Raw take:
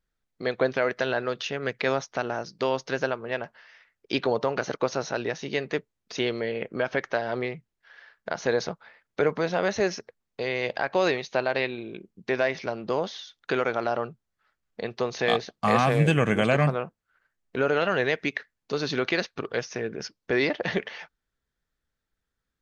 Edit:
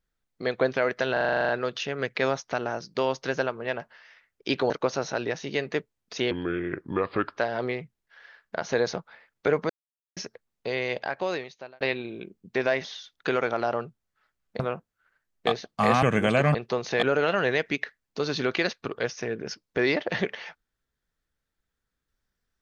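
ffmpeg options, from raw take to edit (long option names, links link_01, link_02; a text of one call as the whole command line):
ffmpeg -i in.wav -filter_complex "[0:a]asplit=22[link_01][link_02][link_03][link_04][link_05][link_06][link_07][link_08][link_09][link_10][link_11][link_12][link_13][link_14][link_15][link_16][link_17][link_18][link_19][link_20][link_21][link_22];[link_01]atrim=end=1.172[link_23];[link_02]atrim=start=1.128:end=1.172[link_24];[link_03]atrim=start=1.128:end=1.172[link_25];[link_04]atrim=start=1.128:end=1.172[link_26];[link_05]atrim=start=1.128:end=1.172[link_27];[link_06]atrim=start=1.128:end=1.172[link_28];[link_07]atrim=start=1.128:end=1.172[link_29];[link_08]atrim=start=1.128:end=1.172[link_30];[link_09]atrim=start=1.128:end=1.172[link_31];[link_10]atrim=start=1.128:end=4.342[link_32];[link_11]atrim=start=4.688:end=6.304[link_33];[link_12]atrim=start=6.3:end=7.11,asetpts=PTS-STARTPTS,asetrate=33516,aresample=44100,atrim=end_sample=47001,asetpts=PTS-STARTPTS[link_34];[link_13]atrim=start=7.106:end=9.43,asetpts=PTS-STARTPTS,afade=type=out:start_time=2.32:duration=0.004:curve=hsin[link_35];[link_14]atrim=start=9.43:end=9.9,asetpts=PTS-STARTPTS,volume=0[link_36];[link_15]atrim=start=9.9:end=11.54,asetpts=PTS-STARTPTS,afade=type=in:duration=0.004:curve=hsin,afade=type=out:start_time=0.61:duration=1.03[link_37];[link_16]atrim=start=11.54:end=12.582,asetpts=PTS-STARTPTS,afade=type=in:duration=0.004:curve=hsin[link_38];[link_17]atrim=start=13.078:end=14.832[link_39];[link_18]atrim=start=16.688:end=17.562[link_40];[link_19]atrim=start=15.308:end=15.872[link_41];[link_20]atrim=start=16.168:end=16.692[link_42];[link_21]atrim=start=14.828:end=15.312[link_43];[link_22]atrim=start=17.558[link_44];[link_23][link_24]acrossfade=duration=0.004:curve1=hsin:curve2=hsin[link_45];[link_45][link_25]acrossfade=duration=0.004:curve1=hsin:curve2=hsin[link_46];[link_46][link_26]acrossfade=duration=0.004:curve1=hsin:curve2=hsin[link_47];[link_47][link_27]acrossfade=duration=0.004:curve1=hsin:curve2=hsin[link_48];[link_48][link_28]acrossfade=duration=0.004:curve1=hsin:curve2=hsin[link_49];[link_49][link_29]acrossfade=duration=0.004:curve1=hsin:curve2=hsin[link_50];[link_50][link_30]acrossfade=duration=0.004:curve1=hsin:curve2=hsin[link_51];[link_51][link_31]acrossfade=duration=0.004:curve1=hsin:curve2=hsin[link_52];[link_52][link_32]acrossfade=duration=0.004:curve1=hsin:curve2=hsin[link_53];[link_53][link_33]acrossfade=duration=0.004:curve1=hsin:curve2=hsin[link_54];[link_54][link_34]acrossfade=duration=0.004:curve1=hsin:curve2=hsin[link_55];[link_35][link_36][link_37][link_38]concat=n=4:v=0:a=1[link_56];[link_55][link_56]acrossfade=duration=0.004:curve1=hsin:curve2=hsin[link_57];[link_57][link_39]acrossfade=duration=0.004:curve1=hsin:curve2=hsin[link_58];[link_58][link_40]acrossfade=duration=0.004:curve1=hsin:curve2=hsin[link_59];[link_59][link_41]acrossfade=duration=0.004:curve1=hsin:curve2=hsin[link_60];[link_60][link_42]acrossfade=duration=0.004:curve1=hsin:curve2=hsin[link_61];[link_61][link_43]acrossfade=duration=0.004:curve1=hsin:curve2=hsin[link_62];[link_62][link_44]acrossfade=duration=0.004:curve1=hsin:curve2=hsin" out.wav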